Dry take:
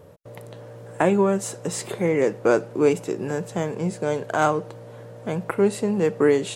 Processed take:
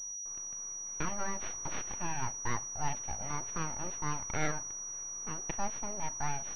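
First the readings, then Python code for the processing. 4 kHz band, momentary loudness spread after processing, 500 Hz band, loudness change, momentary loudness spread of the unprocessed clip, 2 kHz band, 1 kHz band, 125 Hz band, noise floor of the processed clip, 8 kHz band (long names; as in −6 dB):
−12.0 dB, 3 LU, −25.5 dB, −13.5 dB, 21 LU, −10.5 dB, −10.0 dB, −12.5 dB, −42 dBFS, +4.0 dB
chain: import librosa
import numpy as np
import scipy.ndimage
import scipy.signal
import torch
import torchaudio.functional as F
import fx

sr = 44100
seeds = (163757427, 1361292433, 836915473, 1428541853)

y = fx.rider(x, sr, range_db=3, speed_s=0.5)
y = fx.peak_eq(y, sr, hz=120.0, db=-13.5, octaves=2.8)
y = np.abs(y)
y = fx.pwm(y, sr, carrier_hz=5800.0)
y = y * 10.0 ** (-7.5 / 20.0)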